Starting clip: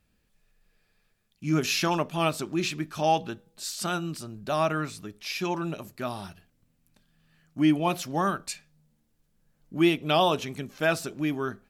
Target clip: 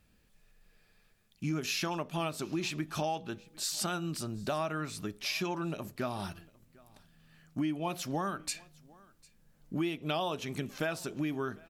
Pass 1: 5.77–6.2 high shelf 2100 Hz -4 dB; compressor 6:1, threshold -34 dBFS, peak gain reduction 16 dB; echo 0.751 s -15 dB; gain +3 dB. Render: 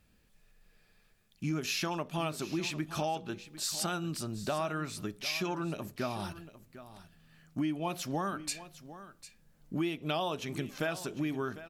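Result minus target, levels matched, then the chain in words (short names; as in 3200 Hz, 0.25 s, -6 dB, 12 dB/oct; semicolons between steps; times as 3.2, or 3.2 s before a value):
echo-to-direct +10 dB
5.77–6.2 high shelf 2100 Hz -4 dB; compressor 6:1, threshold -34 dBFS, peak gain reduction 16 dB; echo 0.751 s -25 dB; gain +3 dB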